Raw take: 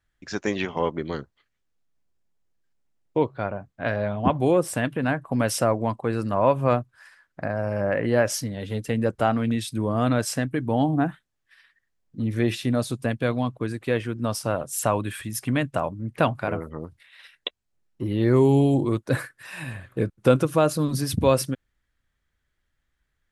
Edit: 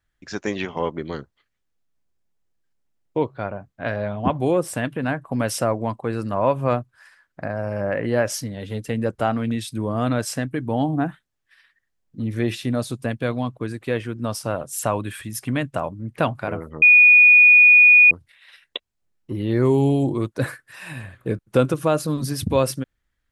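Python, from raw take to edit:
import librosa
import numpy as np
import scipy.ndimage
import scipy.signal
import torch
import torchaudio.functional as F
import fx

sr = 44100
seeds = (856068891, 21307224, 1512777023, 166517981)

y = fx.edit(x, sr, fx.insert_tone(at_s=16.82, length_s=1.29, hz=2460.0, db=-7.5), tone=tone)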